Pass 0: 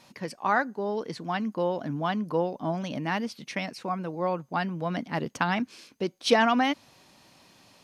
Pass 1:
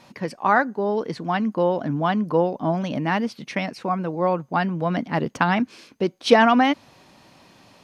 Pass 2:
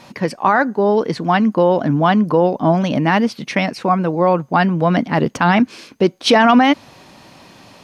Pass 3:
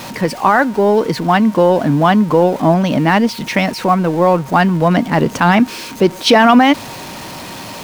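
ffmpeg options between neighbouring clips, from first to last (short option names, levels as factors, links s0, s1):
-af "highshelf=f=3500:g=-8.5,volume=2.24"
-af "alimiter=limit=0.251:level=0:latency=1:release=11,volume=2.66"
-af "aeval=exprs='val(0)+0.5*0.0398*sgn(val(0))':c=same,aeval=exprs='val(0)+0.0112*sin(2*PI*930*n/s)':c=same,volume=1.26"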